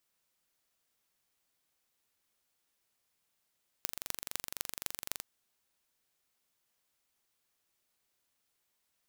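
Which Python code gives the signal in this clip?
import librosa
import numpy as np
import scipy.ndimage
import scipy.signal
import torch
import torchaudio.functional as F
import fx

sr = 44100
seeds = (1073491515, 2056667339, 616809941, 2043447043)

y = fx.impulse_train(sr, length_s=1.37, per_s=23.7, accent_every=6, level_db=-5.5)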